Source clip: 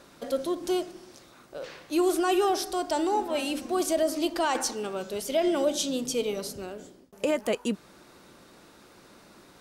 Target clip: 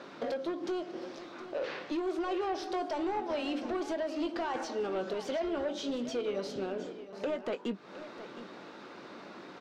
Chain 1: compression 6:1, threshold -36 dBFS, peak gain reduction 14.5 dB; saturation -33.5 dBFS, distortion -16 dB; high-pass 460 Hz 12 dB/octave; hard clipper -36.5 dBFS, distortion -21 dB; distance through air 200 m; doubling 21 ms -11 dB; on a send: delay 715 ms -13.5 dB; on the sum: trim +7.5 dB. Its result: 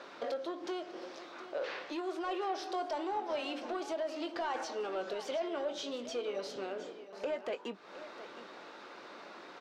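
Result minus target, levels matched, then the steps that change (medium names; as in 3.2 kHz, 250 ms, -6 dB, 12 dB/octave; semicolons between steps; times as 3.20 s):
saturation: distortion +13 dB; 250 Hz band -3.5 dB
change: saturation -24.5 dBFS, distortion -30 dB; change: high-pass 220 Hz 12 dB/octave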